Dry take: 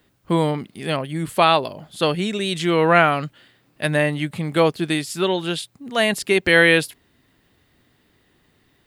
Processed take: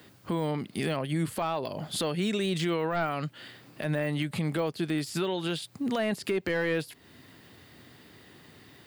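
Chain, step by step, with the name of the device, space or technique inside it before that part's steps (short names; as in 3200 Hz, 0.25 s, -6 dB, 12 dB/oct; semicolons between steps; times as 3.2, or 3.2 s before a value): broadcast voice chain (HPF 81 Hz 24 dB/oct; de-esser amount 75%; compressor 4:1, threshold -35 dBFS, peak gain reduction 18.5 dB; bell 4700 Hz +4 dB 0.21 oct; limiter -28 dBFS, peak gain reduction 10.5 dB); gain +8 dB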